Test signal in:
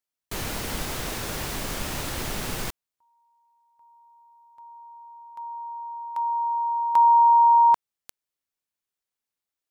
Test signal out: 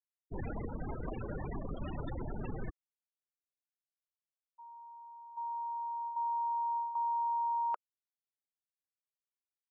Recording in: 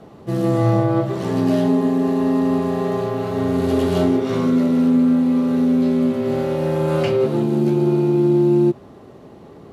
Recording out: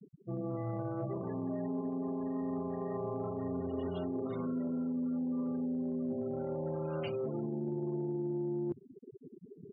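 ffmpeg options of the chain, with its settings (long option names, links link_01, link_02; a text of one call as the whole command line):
ffmpeg -i in.wav -af "afftfilt=real='re*gte(hypot(re,im),0.0562)':imag='im*gte(hypot(re,im),0.0562)':win_size=1024:overlap=0.75,highshelf=frequency=3500:gain=12,areverse,acompressor=threshold=-28dB:ratio=10:attack=2.1:release=370:knee=1:detection=peak,areverse,volume=-3.5dB" out.wav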